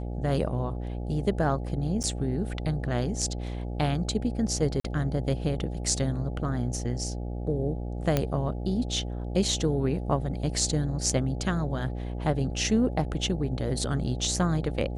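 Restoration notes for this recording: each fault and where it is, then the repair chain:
buzz 60 Hz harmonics 14 -33 dBFS
2.03–2.04 gap 8.2 ms
4.8–4.84 gap 44 ms
8.17 pop -10 dBFS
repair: de-click; de-hum 60 Hz, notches 14; interpolate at 2.03, 8.2 ms; interpolate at 4.8, 44 ms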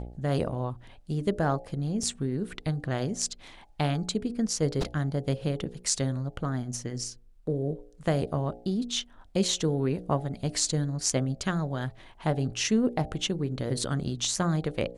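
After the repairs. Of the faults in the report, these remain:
none

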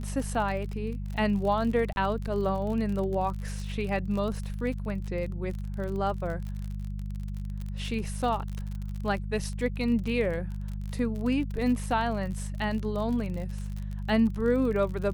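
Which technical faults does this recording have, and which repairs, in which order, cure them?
crackle 45/s -34 dBFS
hum 50 Hz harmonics 4 -34 dBFS
1.93–1.96 gap 31 ms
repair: de-click; de-hum 50 Hz, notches 4; interpolate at 1.93, 31 ms

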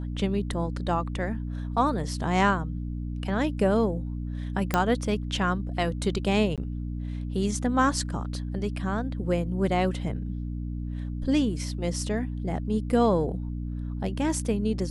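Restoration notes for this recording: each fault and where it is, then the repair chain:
hum 60 Hz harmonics 5 -32 dBFS
4.74 pop -9 dBFS
6.56–6.58 gap 17 ms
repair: de-click; de-hum 60 Hz, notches 5; interpolate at 6.56, 17 ms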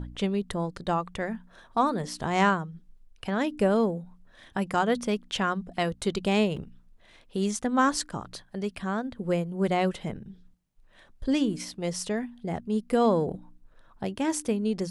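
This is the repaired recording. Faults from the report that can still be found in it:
none

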